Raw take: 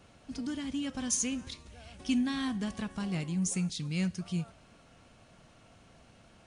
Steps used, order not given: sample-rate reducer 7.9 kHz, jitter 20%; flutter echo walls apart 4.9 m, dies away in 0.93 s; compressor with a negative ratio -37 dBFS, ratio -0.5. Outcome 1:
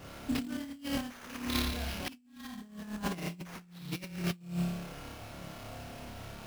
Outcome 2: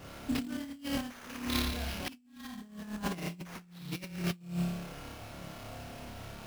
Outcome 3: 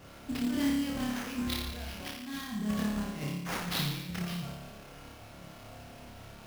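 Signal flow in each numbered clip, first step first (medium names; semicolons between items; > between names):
flutter echo > sample-rate reducer > compressor with a negative ratio; flutter echo > compressor with a negative ratio > sample-rate reducer; compressor with a negative ratio > flutter echo > sample-rate reducer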